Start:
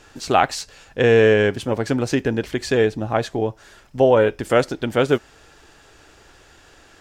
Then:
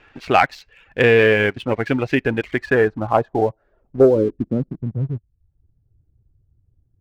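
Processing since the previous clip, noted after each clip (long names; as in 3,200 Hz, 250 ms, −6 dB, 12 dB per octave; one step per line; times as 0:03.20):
reverb reduction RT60 0.59 s
low-pass filter sweep 2,400 Hz → 110 Hz, 0:02.42–0:05.16
leveller curve on the samples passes 1
level −2.5 dB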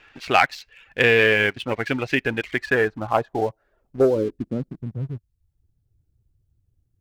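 tilt shelving filter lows −5 dB, about 1,400 Hz
level −1 dB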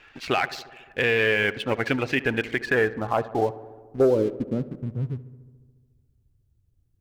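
brickwall limiter −11.5 dBFS, peak gain reduction 10 dB
feedback echo with a low-pass in the loop 71 ms, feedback 76%, low-pass 2,400 Hz, level −17 dB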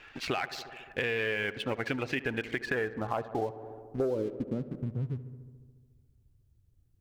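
downward compressor 3 to 1, threshold −31 dBFS, peak gain reduction 12 dB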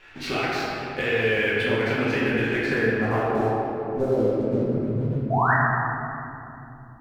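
sound drawn into the spectrogram rise, 0:05.30–0:05.54, 620–2,000 Hz −27 dBFS
in parallel at −10 dB: dead-zone distortion −52 dBFS
on the sum: rectangular room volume 120 cubic metres, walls hard, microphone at 1.1 metres
level −2.5 dB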